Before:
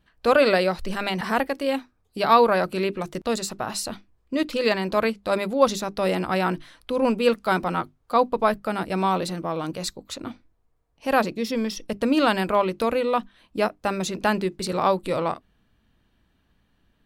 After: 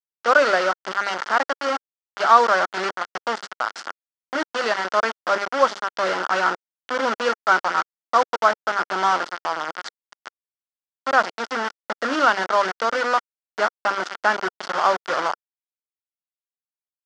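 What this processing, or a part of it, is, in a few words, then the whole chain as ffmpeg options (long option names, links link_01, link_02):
hand-held game console: -af "acrusher=bits=3:mix=0:aa=0.000001,highpass=460,equalizer=frequency=460:width_type=q:width=4:gain=-4,equalizer=frequency=1400:width_type=q:width=4:gain=9,equalizer=frequency=2500:width_type=q:width=4:gain=-9,equalizer=frequency=3900:width_type=q:width=4:gain=-8,lowpass=frequency=5100:width=0.5412,lowpass=frequency=5100:width=1.3066,volume=2dB"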